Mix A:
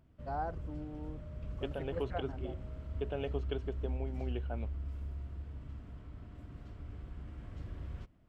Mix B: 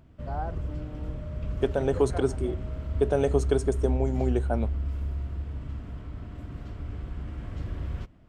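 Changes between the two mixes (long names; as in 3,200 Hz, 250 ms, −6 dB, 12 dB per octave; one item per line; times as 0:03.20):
second voice: remove transistor ladder low-pass 3,100 Hz, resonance 75%
background +10.0 dB
reverb: on, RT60 0.65 s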